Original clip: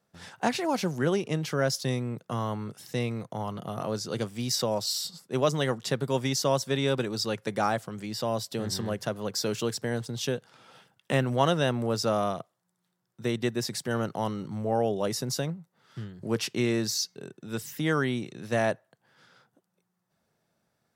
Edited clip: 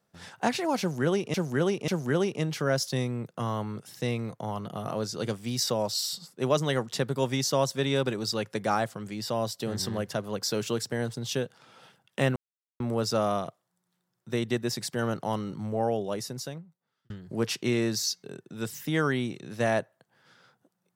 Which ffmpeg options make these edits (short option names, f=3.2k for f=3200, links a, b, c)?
-filter_complex "[0:a]asplit=6[a][b][c][d][e][f];[a]atrim=end=1.342[g];[b]atrim=start=0.798:end=1.342[h];[c]atrim=start=0.798:end=11.28,asetpts=PTS-STARTPTS,afade=t=out:st=10.478:d=0.004:c=hsin[i];[d]atrim=start=11.28:end=11.72,asetpts=PTS-STARTPTS,volume=0[j];[e]atrim=start=11.72:end=16.02,asetpts=PTS-STARTPTS,afade=t=in:d=0.004:c=hsin,afade=t=out:st=2.87:d=1.43[k];[f]atrim=start=16.02,asetpts=PTS-STARTPTS,afade=t=in:d=0.004:c=hsin[l];[g][h]acrossfade=d=0.004:c1=hsin:c2=hsin[m];[i][j][k][l]concat=n=4:v=0:a=1[n];[m][n]acrossfade=d=0.004:c1=hsin:c2=hsin"